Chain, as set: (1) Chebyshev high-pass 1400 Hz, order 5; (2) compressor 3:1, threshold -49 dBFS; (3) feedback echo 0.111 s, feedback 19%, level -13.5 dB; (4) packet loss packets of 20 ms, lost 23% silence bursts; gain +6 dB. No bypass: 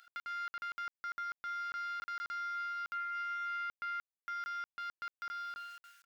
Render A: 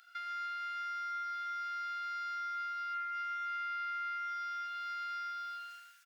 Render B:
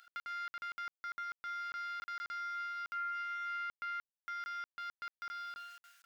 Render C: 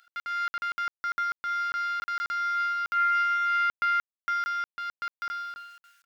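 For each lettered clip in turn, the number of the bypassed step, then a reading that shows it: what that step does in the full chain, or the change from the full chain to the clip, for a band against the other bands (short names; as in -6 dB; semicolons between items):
4, momentary loudness spread change -3 LU; 3, loudness change -1.0 LU; 2, mean gain reduction 10.0 dB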